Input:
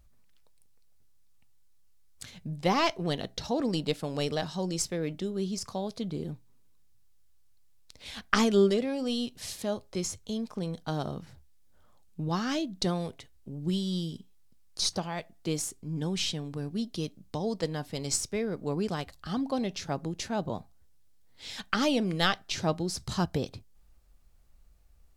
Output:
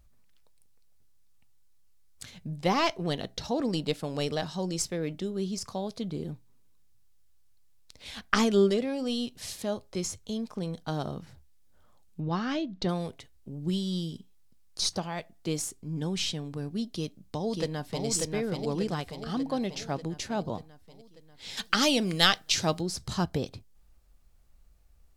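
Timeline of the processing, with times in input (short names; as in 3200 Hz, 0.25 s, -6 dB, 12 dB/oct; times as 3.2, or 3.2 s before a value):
12.2–12.89 LPF 3700 Hz
16.89–18.06 echo throw 0.59 s, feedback 60%, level -3 dB
21.57–22.81 high shelf 2400 Hz +10.5 dB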